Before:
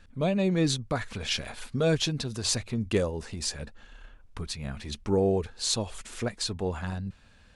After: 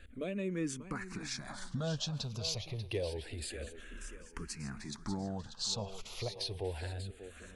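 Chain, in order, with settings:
downward compressor 2 to 1, threshold −43 dBFS, peak gain reduction 12.5 dB
feedback echo with a high-pass in the loop 590 ms, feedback 51%, high-pass 210 Hz, level −10.5 dB
frequency shifter mixed with the dry sound −0.28 Hz
level +3 dB

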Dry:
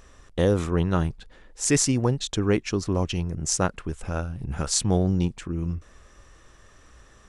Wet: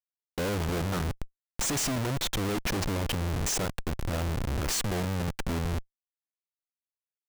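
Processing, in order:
comparator with hysteresis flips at −34 dBFS
level −2.5 dB

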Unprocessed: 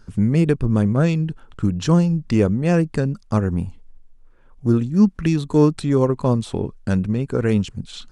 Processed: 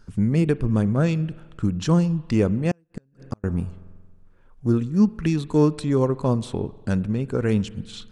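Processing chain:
spring reverb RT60 1.5 s, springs 45 ms, chirp 45 ms, DRR 18 dB
0:02.71–0:03.44: gate with flip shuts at −13 dBFS, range −40 dB
level −3 dB

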